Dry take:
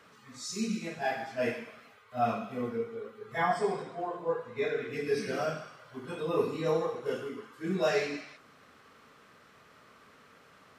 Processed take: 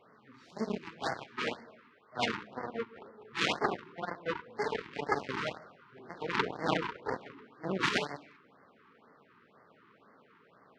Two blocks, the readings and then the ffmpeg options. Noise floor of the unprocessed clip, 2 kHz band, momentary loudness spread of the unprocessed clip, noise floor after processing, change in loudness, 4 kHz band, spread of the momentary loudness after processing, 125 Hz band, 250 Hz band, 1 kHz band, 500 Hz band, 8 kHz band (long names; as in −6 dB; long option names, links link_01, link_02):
−59 dBFS, +2.0 dB, 13 LU, −64 dBFS, −2.5 dB, +5.5 dB, 16 LU, −3.5 dB, −3.5 dB, −1.5 dB, −6.5 dB, −5.0 dB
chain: -af "bandreject=frequency=50:width_type=h:width=6,bandreject=frequency=100:width_type=h:width=6,bandreject=frequency=150:width_type=h:width=6,bandreject=frequency=200:width_type=h:width=6,bandreject=frequency=250:width_type=h:width=6,bandreject=frequency=300:width_type=h:width=6,bandreject=frequency=350:width_type=h:width=6,aeval=exprs='max(val(0),0)':channel_layout=same,adynamicsmooth=sensitivity=8:basefreq=2000,aeval=exprs='0.158*(cos(1*acos(clip(val(0)/0.158,-1,1)))-cos(1*PI/2))+0.0501*(cos(8*acos(clip(val(0)/0.158,-1,1)))-cos(8*PI/2))':channel_layout=same,highpass=150,lowpass=5000,afftfilt=real='re*(1-between(b*sr/1024,580*pow(3100/580,0.5+0.5*sin(2*PI*2*pts/sr))/1.41,580*pow(3100/580,0.5+0.5*sin(2*PI*2*pts/sr))*1.41))':imag='im*(1-between(b*sr/1024,580*pow(3100/580,0.5+0.5*sin(2*PI*2*pts/sr))/1.41,580*pow(3100/580,0.5+0.5*sin(2*PI*2*pts/sr))*1.41))':win_size=1024:overlap=0.75,volume=6dB"